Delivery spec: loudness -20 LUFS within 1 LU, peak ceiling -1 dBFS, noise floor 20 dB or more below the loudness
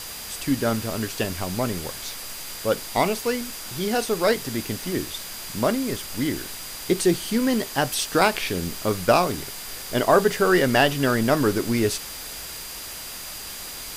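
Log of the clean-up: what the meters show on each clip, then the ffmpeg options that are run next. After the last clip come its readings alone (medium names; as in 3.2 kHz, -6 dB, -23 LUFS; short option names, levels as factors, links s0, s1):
steady tone 4.8 kHz; tone level -42 dBFS; noise floor -36 dBFS; noise floor target -44 dBFS; loudness -24.0 LUFS; peak level -5.5 dBFS; loudness target -20.0 LUFS
-> -af "bandreject=f=4800:w=30"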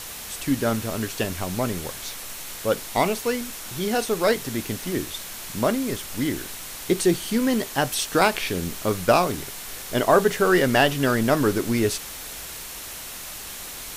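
steady tone not found; noise floor -37 dBFS; noise floor target -45 dBFS
-> -af "afftdn=nr=8:nf=-37"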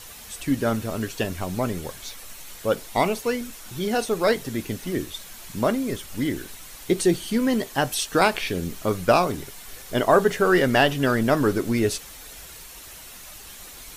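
noise floor -42 dBFS; noise floor target -44 dBFS
-> -af "afftdn=nr=6:nf=-42"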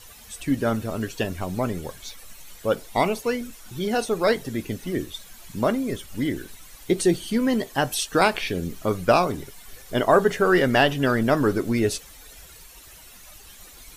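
noise floor -47 dBFS; loudness -23.5 LUFS; peak level -6.0 dBFS; loudness target -20.0 LUFS
-> -af "volume=1.5"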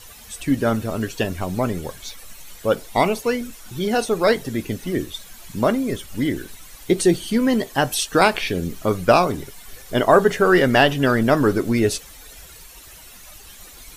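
loudness -20.0 LUFS; peak level -2.5 dBFS; noise floor -43 dBFS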